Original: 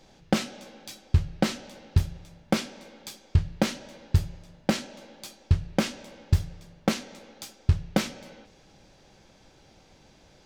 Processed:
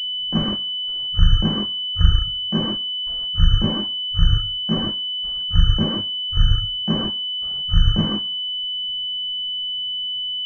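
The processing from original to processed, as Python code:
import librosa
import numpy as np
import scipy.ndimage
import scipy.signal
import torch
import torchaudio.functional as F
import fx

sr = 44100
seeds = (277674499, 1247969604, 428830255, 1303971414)

p1 = fx.noise_reduce_blind(x, sr, reduce_db=16)
p2 = fx.over_compress(p1, sr, threshold_db=-24.0, ratio=-0.5)
p3 = fx.hum_notches(p2, sr, base_hz=50, count=3)
p4 = (np.kron(p3[::6], np.eye(6)[0]) * 6)[:len(p3)]
p5 = fx.tilt_eq(p4, sr, slope=-2.0)
p6 = fx.rev_gated(p5, sr, seeds[0], gate_ms=190, shape='flat', drr_db=-7.5)
p7 = fx.env_flanger(p6, sr, rest_ms=11.6, full_db=-19.5)
p8 = fx.low_shelf(p7, sr, hz=360.0, db=10.0)
p9 = p8 + fx.echo_thinned(p8, sr, ms=68, feedback_pct=57, hz=420.0, wet_db=-11.0, dry=0)
p10 = fx.dereverb_blind(p9, sr, rt60_s=0.67)
p11 = fx.pwm(p10, sr, carrier_hz=3000.0)
y = F.gain(torch.from_numpy(p11), -7.5).numpy()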